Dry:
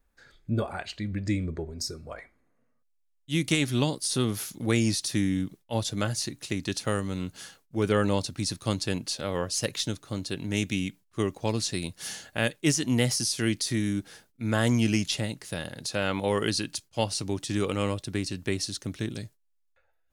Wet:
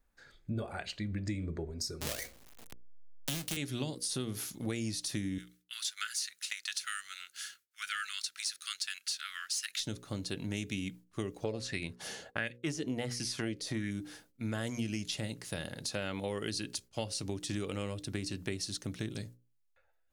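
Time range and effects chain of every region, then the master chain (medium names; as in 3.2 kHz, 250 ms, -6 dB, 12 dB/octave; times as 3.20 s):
2.01–3.57 s: square wave that keeps the level + treble shelf 3.6 kHz +8.5 dB + three bands compressed up and down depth 100%
5.38–9.80 s: steep high-pass 1.3 kHz 72 dB/octave + waveshaping leveller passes 1
11.44–13.91 s: expander -46 dBFS + treble shelf 5.8 kHz -10 dB + sweeping bell 1.4 Hz 430–2300 Hz +12 dB
whole clip: hum notches 60/120/180/240/300/360/420/480/540 Hz; dynamic bell 1 kHz, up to -5 dB, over -44 dBFS, Q 1.8; compression, threshold -30 dBFS; trim -2.5 dB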